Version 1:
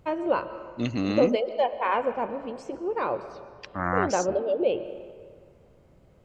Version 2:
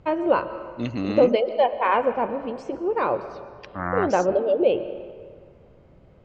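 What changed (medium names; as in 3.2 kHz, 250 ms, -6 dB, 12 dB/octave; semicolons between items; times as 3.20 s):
first voice +5.0 dB; master: add distance through air 91 m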